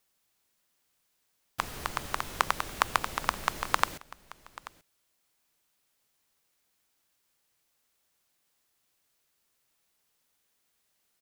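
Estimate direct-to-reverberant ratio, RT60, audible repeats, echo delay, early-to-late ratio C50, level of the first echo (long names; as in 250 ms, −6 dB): no reverb audible, no reverb audible, 1, 835 ms, no reverb audible, −19.0 dB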